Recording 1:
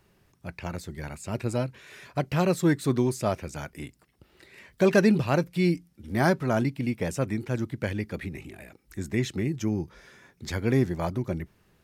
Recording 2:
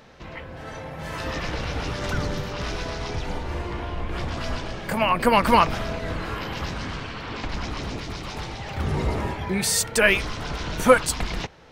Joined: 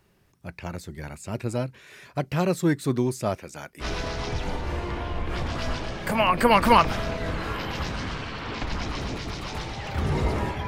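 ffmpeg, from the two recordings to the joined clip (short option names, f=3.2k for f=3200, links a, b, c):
-filter_complex "[0:a]asettb=1/sr,asplit=3[a][b][c];[a]atrim=end=3.364[d];[b]atrim=start=3.36:end=3.85,asetpts=PTS-STARTPTS,afade=t=in:d=0.004:c=qsin,afade=t=out:st=0.486:d=0.004:c=qsin,equalizer=f=64:w=0.42:g=-11.5[e];[c]atrim=start=3.846[f];[d][e]acrossfade=d=0.004:c1=hsin:c2=qsin[g];[g][f]acrossfade=d=0.004:c1=qsin:c2=hsin,apad=whole_dur=10.67,atrim=end=10.67,atrim=end=3.85,asetpts=PTS-STARTPTS[h];[1:a]atrim=start=2.61:end=9.49,asetpts=PTS-STARTPTS[i];[h][i]acrossfade=d=0.06:c1=tri:c2=tri"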